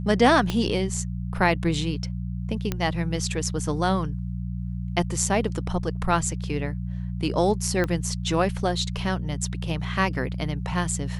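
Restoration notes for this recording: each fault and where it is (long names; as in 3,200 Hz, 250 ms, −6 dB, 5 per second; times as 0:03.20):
mains hum 60 Hz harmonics 3 −30 dBFS
0:00.50: click −12 dBFS
0:02.72: click −11 dBFS
0:07.84: click −13 dBFS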